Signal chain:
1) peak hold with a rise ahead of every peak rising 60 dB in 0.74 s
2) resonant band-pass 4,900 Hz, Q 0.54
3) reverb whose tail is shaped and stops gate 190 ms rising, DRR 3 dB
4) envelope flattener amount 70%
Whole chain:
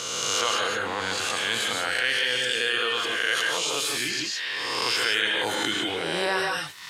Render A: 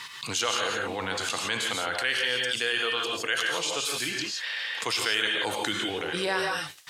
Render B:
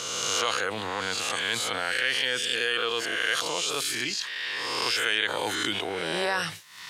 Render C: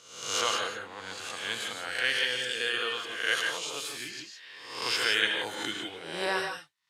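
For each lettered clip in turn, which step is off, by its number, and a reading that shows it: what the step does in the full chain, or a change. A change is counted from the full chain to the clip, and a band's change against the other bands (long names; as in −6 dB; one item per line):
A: 1, 125 Hz band +3.0 dB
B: 3, 125 Hz band +1.5 dB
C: 4, change in crest factor +5.5 dB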